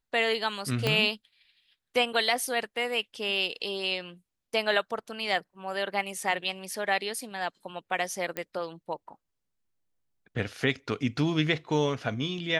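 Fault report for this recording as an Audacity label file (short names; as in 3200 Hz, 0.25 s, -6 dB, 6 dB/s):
0.870000	0.870000	pop -12 dBFS
8.370000	8.370000	pop -17 dBFS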